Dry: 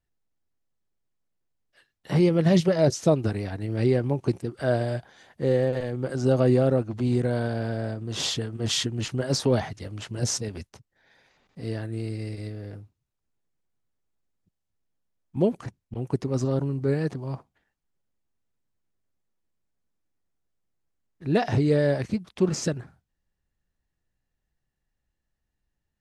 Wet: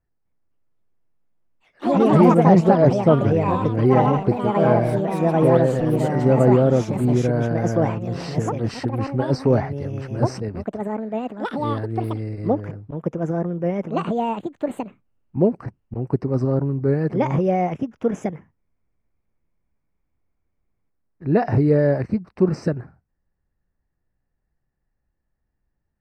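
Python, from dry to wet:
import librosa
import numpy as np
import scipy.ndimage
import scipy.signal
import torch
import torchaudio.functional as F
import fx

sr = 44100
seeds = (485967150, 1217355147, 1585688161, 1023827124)

y = np.convolve(x, np.full(13, 1.0 / 13))[:len(x)]
y = fx.echo_pitch(y, sr, ms=257, semitones=4, count=3, db_per_echo=-3.0)
y = F.gain(torch.from_numpy(y), 5.0).numpy()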